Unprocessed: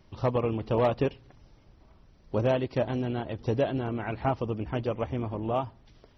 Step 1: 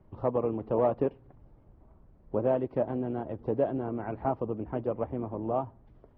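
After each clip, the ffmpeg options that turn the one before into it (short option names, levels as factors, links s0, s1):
-filter_complex "[0:a]lowpass=1000,acrossover=split=190[s0][s1];[s0]acompressor=threshold=0.00794:ratio=6[s2];[s2][s1]amix=inputs=2:normalize=0"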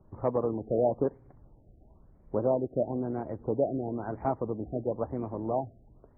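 -af "afftfilt=real='re*lt(b*sr/1024,750*pow(2500/750,0.5+0.5*sin(2*PI*1*pts/sr)))':imag='im*lt(b*sr/1024,750*pow(2500/750,0.5+0.5*sin(2*PI*1*pts/sr)))':win_size=1024:overlap=0.75"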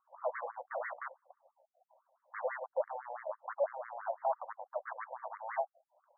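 -af "volume=37.6,asoftclip=hard,volume=0.0266,adynamicsmooth=sensitivity=2:basefreq=1300,afftfilt=real='re*between(b*sr/1024,670*pow(1600/670,0.5+0.5*sin(2*PI*6*pts/sr))/1.41,670*pow(1600/670,0.5+0.5*sin(2*PI*6*pts/sr))*1.41)':imag='im*between(b*sr/1024,670*pow(1600/670,0.5+0.5*sin(2*PI*6*pts/sr))/1.41,670*pow(1600/670,0.5+0.5*sin(2*PI*6*pts/sr))*1.41)':win_size=1024:overlap=0.75,volume=2.24"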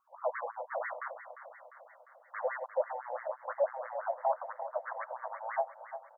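-af "aecho=1:1:350|700|1050|1400|1750|2100|2450:0.266|0.157|0.0926|0.0546|0.0322|0.019|0.0112,volume=1.33"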